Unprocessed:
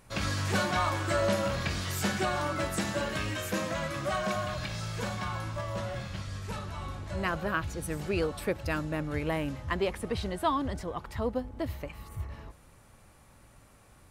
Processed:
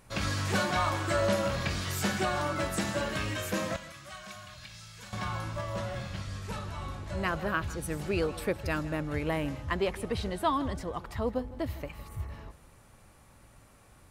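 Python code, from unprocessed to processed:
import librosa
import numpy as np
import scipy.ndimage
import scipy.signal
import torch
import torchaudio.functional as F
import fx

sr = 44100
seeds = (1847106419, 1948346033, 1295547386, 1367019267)

p1 = fx.tone_stack(x, sr, knobs='5-5-5', at=(3.76, 5.13))
y = p1 + fx.echo_single(p1, sr, ms=159, db=-17.5, dry=0)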